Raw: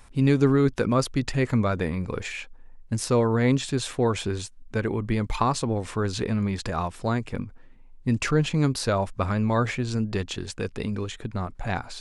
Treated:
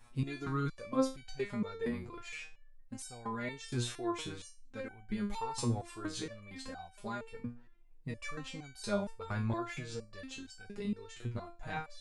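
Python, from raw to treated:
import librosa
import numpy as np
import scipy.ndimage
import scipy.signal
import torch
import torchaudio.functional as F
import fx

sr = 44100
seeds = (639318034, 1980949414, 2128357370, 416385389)

y = fx.high_shelf(x, sr, hz=7200.0, db=6.0, at=(5.2, 6.24))
y = fx.resonator_held(y, sr, hz=4.3, low_hz=120.0, high_hz=760.0)
y = y * 10.0 ** (2.0 / 20.0)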